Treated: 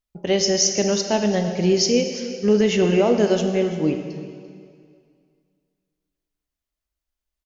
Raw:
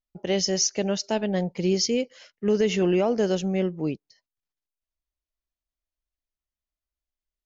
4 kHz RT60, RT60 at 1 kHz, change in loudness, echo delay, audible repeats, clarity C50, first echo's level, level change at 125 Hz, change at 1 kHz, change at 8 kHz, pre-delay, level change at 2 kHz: 2.0 s, 2.1 s, +5.0 dB, 341 ms, 1, 6.5 dB, -16.0 dB, +4.5 dB, +5.5 dB, no reading, 4 ms, +5.5 dB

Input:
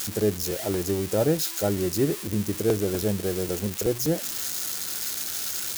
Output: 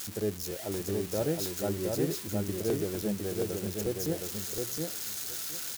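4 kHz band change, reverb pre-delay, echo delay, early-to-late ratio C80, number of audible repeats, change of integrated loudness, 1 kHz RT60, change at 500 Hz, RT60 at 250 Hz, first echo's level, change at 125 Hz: -6.5 dB, no reverb, 717 ms, no reverb, 2, -6.5 dB, no reverb, -6.5 dB, no reverb, -3.5 dB, -6.5 dB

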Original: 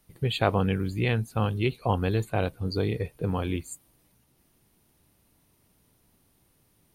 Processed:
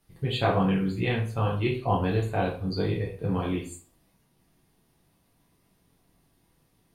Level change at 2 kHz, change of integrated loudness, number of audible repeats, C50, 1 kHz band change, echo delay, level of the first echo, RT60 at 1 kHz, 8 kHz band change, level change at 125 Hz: 0.0 dB, +0.5 dB, no echo, 7.5 dB, +1.5 dB, no echo, no echo, 0.45 s, -4.0 dB, -0.5 dB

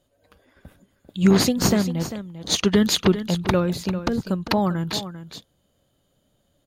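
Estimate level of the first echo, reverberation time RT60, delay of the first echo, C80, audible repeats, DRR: -12.0 dB, no reverb, 396 ms, no reverb, 1, no reverb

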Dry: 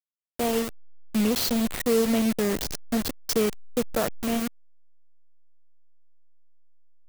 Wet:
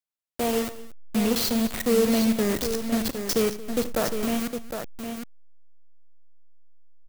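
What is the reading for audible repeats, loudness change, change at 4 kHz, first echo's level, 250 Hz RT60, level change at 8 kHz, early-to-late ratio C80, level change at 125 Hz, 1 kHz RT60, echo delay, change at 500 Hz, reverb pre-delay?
4, +0.5 dB, +1.0 dB, -17.5 dB, no reverb, +1.0 dB, no reverb, +1.0 dB, no reverb, 40 ms, +1.5 dB, no reverb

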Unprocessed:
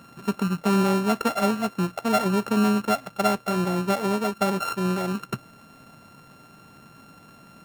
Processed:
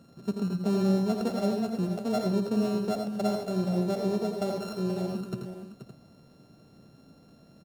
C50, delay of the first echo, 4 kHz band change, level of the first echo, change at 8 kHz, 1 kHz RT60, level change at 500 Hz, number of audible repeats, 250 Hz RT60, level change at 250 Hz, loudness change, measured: no reverb, 54 ms, -8.0 dB, -18.0 dB, -10.5 dB, no reverb, -3.5 dB, 4, no reverb, -3.5 dB, -5.0 dB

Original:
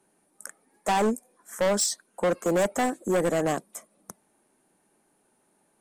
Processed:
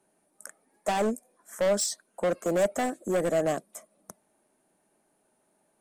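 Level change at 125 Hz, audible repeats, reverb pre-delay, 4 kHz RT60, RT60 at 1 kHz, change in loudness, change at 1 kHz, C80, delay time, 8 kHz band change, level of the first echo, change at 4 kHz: -3.5 dB, no echo, no reverb, no reverb, no reverb, -2.0 dB, -4.0 dB, no reverb, no echo, -3.5 dB, no echo, -3.5 dB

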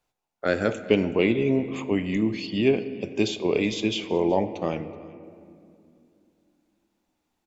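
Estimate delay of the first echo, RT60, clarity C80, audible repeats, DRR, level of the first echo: 376 ms, 2.4 s, 13.0 dB, 1, 10.5 dB, -23.0 dB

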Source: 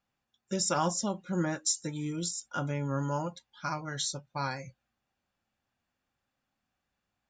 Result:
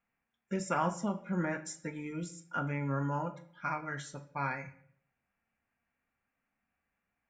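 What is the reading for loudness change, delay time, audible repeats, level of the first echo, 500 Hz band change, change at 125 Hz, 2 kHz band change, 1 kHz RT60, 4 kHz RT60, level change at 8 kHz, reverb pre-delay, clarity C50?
-3.5 dB, no echo, no echo, no echo, -3.0 dB, -2.5 dB, +1.5 dB, 0.55 s, 0.50 s, -14.5 dB, 4 ms, 14.5 dB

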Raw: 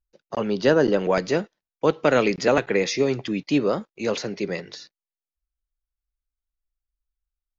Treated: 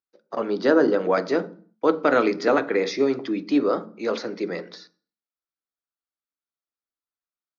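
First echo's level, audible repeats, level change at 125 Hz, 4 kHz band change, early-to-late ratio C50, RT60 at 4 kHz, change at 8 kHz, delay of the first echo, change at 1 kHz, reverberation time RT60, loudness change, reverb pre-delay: no echo, no echo, -9.5 dB, -4.5 dB, 18.5 dB, 0.40 s, no reading, no echo, +1.5 dB, 0.45 s, 0.0 dB, 3 ms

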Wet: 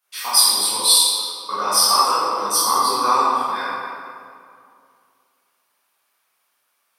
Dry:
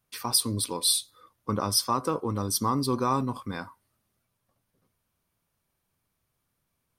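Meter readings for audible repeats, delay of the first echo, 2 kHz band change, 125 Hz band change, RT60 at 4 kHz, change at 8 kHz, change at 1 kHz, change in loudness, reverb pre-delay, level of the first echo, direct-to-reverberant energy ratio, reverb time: no echo, no echo, +14.0 dB, under -15 dB, 1.4 s, +11.5 dB, +13.0 dB, +10.5 dB, 12 ms, no echo, -12.0 dB, 2.3 s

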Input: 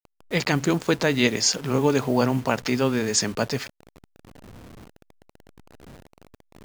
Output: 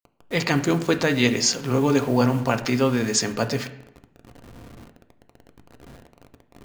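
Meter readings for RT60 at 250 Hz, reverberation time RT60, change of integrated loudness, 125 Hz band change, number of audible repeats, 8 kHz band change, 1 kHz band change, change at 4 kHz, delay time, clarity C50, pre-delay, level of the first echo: 0.75 s, 0.85 s, +1.0 dB, +2.0 dB, no echo, 0.0 dB, +1.0 dB, 0.0 dB, no echo, 13.0 dB, 3 ms, no echo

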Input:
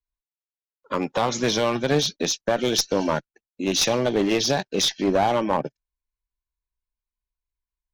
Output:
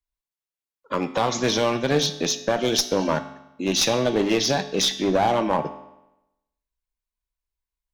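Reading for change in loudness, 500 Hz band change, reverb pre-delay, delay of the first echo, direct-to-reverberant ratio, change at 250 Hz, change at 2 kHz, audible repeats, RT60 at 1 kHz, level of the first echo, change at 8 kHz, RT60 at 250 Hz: +0.5 dB, 0.0 dB, 4 ms, no echo, 9.0 dB, 0.0 dB, +0.5 dB, no echo, 0.90 s, no echo, 0.0 dB, 0.90 s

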